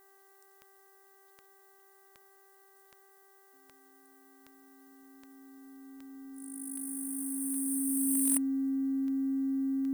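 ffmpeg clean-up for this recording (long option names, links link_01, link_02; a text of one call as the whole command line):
ffmpeg -i in.wav -af "adeclick=threshold=4,bandreject=frequency=390:width_type=h:width=4,bandreject=frequency=780:width_type=h:width=4,bandreject=frequency=1170:width_type=h:width=4,bandreject=frequency=1560:width_type=h:width=4,bandreject=frequency=1950:width_type=h:width=4,bandreject=frequency=270:width=30,agate=range=-21dB:threshold=-53dB" out.wav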